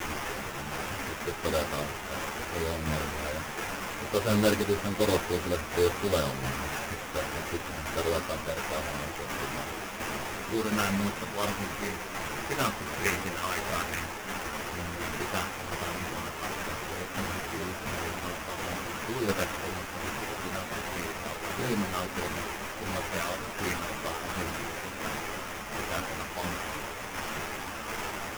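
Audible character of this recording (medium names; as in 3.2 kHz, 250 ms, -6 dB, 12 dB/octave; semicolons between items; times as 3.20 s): a quantiser's noise floor 6-bit, dither triangular; tremolo saw down 1.4 Hz, depth 45%; aliases and images of a low sample rate 4.2 kHz, jitter 20%; a shimmering, thickened sound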